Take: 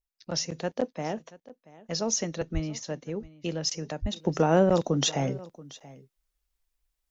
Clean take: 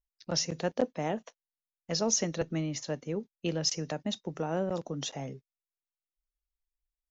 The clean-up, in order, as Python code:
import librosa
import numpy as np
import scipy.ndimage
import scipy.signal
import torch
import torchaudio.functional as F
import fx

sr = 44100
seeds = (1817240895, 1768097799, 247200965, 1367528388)

y = fx.highpass(x, sr, hz=140.0, slope=24, at=(2.53, 2.65), fade=0.02)
y = fx.highpass(y, sr, hz=140.0, slope=24, at=(4.01, 4.13), fade=0.02)
y = fx.fix_echo_inverse(y, sr, delay_ms=681, level_db=-20.0)
y = fx.gain(y, sr, db=fx.steps((0.0, 0.0), (4.16, -10.5)))